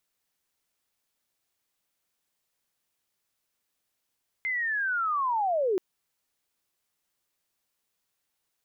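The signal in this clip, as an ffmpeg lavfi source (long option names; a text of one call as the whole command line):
ffmpeg -f lavfi -i "aevalsrc='pow(10,(-26.5+4*t/1.33)/20)*sin(2*PI*(2100*t-1750*t*t/(2*1.33)))':duration=1.33:sample_rate=44100" out.wav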